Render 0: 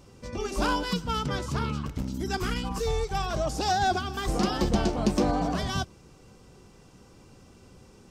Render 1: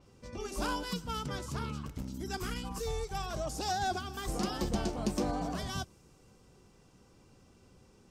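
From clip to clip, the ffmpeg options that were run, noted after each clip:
ffmpeg -i in.wav -af "adynamicequalizer=threshold=0.00316:dfrequency=6600:dqfactor=0.7:tfrequency=6600:tqfactor=0.7:attack=5:release=100:ratio=0.375:range=4:mode=boostabove:tftype=highshelf,volume=-8dB" out.wav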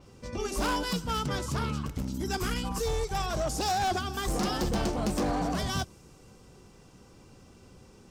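ffmpeg -i in.wav -af "volume=31.5dB,asoftclip=hard,volume=-31.5dB,volume=7dB" out.wav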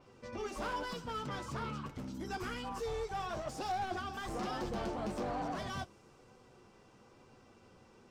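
ffmpeg -i in.wav -filter_complex "[0:a]asplit=2[link_01][link_02];[link_02]highpass=frequency=720:poles=1,volume=13dB,asoftclip=type=tanh:threshold=-24dB[link_03];[link_01][link_03]amix=inputs=2:normalize=0,lowpass=frequency=1600:poles=1,volume=-6dB,flanger=delay=7.8:depth=1.5:regen=-40:speed=1.1:shape=triangular,volume=-3.5dB" out.wav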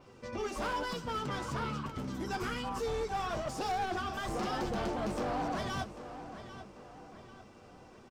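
ffmpeg -i in.wav -filter_complex "[0:a]asoftclip=type=hard:threshold=-34dB,asplit=2[link_01][link_02];[link_02]adelay=793,lowpass=frequency=4900:poles=1,volume=-12dB,asplit=2[link_03][link_04];[link_04]adelay=793,lowpass=frequency=4900:poles=1,volume=0.46,asplit=2[link_05][link_06];[link_06]adelay=793,lowpass=frequency=4900:poles=1,volume=0.46,asplit=2[link_07][link_08];[link_08]adelay=793,lowpass=frequency=4900:poles=1,volume=0.46,asplit=2[link_09][link_10];[link_10]adelay=793,lowpass=frequency=4900:poles=1,volume=0.46[link_11];[link_01][link_03][link_05][link_07][link_09][link_11]amix=inputs=6:normalize=0,volume=4dB" out.wav

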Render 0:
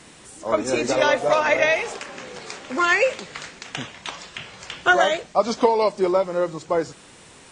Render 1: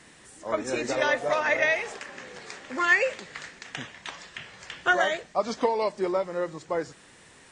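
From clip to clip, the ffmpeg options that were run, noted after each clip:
ffmpeg -i in.wav -af "equalizer=frequency=1800:width_type=o:width=0.33:gain=7.5,volume=-7dB" out.wav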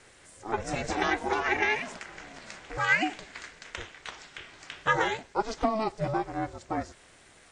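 ffmpeg -i in.wav -af "aeval=exprs='val(0)*sin(2*PI*220*n/s)':channel_layout=same" out.wav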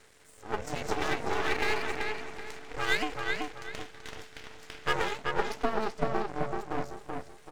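ffmpeg -i in.wav -filter_complex "[0:a]aeval=exprs='max(val(0),0)':channel_layout=same,asplit=2[link_01][link_02];[link_02]adelay=382,lowpass=frequency=3400:poles=1,volume=-3dB,asplit=2[link_03][link_04];[link_04]adelay=382,lowpass=frequency=3400:poles=1,volume=0.33,asplit=2[link_05][link_06];[link_06]adelay=382,lowpass=frequency=3400:poles=1,volume=0.33,asplit=2[link_07][link_08];[link_08]adelay=382,lowpass=frequency=3400:poles=1,volume=0.33[link_09];[link_01][link_03][link_05][link_07][link_09]amix=inputs=5:normalize=0" out.wav

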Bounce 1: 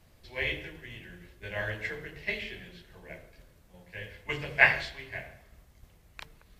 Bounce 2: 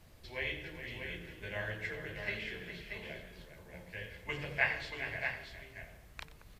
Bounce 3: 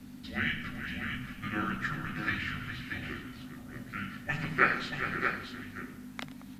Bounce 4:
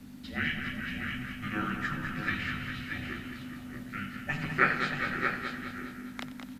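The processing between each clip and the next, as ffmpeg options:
ffmpeg -i in.wav -filter_complex "[0:a]acompressor=threshold=-48dB:ratio=1.5,asplit=2[link_01][link_02];[link_02]aecho=0:1:91|411|633:0.158|0.282|0.473[link_03];[link_01][link_03]amix=inputs=2:normalize=0,volume=1dB" out.wav
ffmpeg -i in.wav -af "aeval=exprs='val(0)+0.002*(sin(2*PI*50*n/s)+sin(2*PI*2*50*n/s)/2+sin(2*PI*3*50*n/s)/3+sin(2*PI*4*50*n/s)/4+sin(2*PI*5*50*n/s)/5)':channel_layout=same,afreqshift=-300,volume=6dB" out.wav
ffmpeg -i in.wav -af "aecho=1:1:204|408|612|816|1020|1224:0.398|0.215|0.116|0.0627|0.0339|0.0183" out.wav

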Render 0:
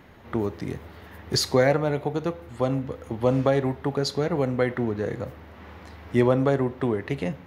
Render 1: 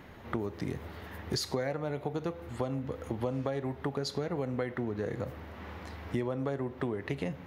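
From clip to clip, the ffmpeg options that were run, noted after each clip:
ffmpeg -i in.wav -af "acompressor=threshold=-30dB:ratio=6" out.wav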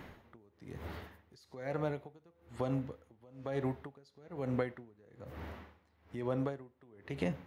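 ffmpeg -i in.wav -af "aeval=exprs='val(0)*pow(10,-30*(0.5-0.5*cos(2*PI*1.1*n/s))/20)':channel_layout=same,volume=1dB" out.wav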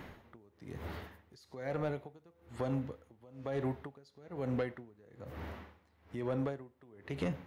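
ffmpeg -i in.wav -af "asoftclip=type=tanh:threshold=-27dB,volume=1.5dB" out.wav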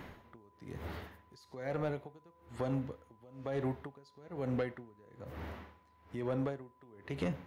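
ffmpeg -i in.wav -af "aeval=exprs='val(0)+0.000501*sin(2*PI*1000*n/s)':channel_layout=same" out.wav

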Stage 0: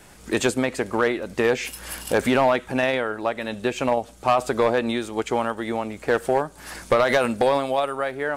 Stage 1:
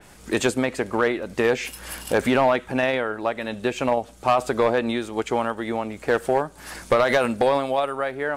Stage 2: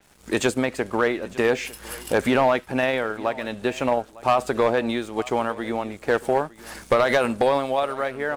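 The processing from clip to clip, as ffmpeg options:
ffmpeg -i in.wav -af "adynamicequalizer=threshold=0.01:dfrequency=4000:dqfactor=0.7:tfrequency=4000:tqfactor=0.7:attack=5:release=100:ratio=0.375:range=2:mode=cutabove:tftype=highshelf" out.wav
ffmpeg -i in.wav -af "aeval=exprs='sgn(val(0))*max(abs(val(0))-0.00376,0)':channel_layout=same,aecho=1:1:905:0.1" out.wav

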